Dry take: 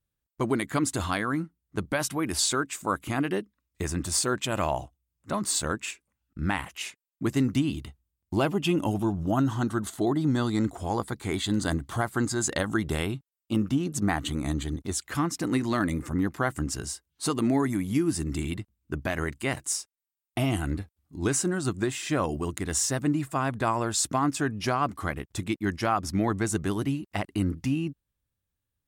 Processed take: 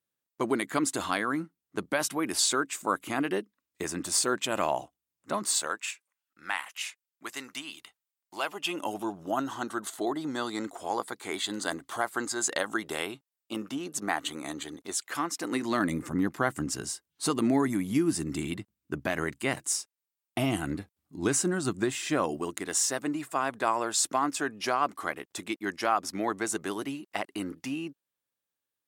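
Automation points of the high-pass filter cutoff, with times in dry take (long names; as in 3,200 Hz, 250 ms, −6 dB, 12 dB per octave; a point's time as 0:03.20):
0:05.33 250 Hz
0:05.89 960 Hz
0:08.41 960 Hz
0:08.96 430 Hz
0:15.41 430 Hz
0:15.92 160 Hz
0:21.85 160 Hz
0:22.82 370 Hz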